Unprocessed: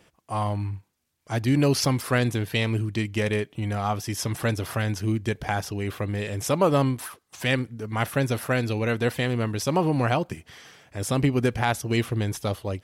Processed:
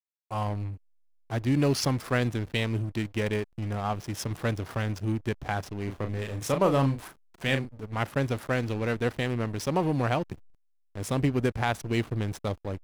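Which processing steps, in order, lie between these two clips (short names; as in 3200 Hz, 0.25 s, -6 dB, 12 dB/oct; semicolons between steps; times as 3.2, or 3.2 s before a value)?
backlash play -29 dBFS; 5.84–7.85 doubler 37 ms -7 dB; gain -3 dB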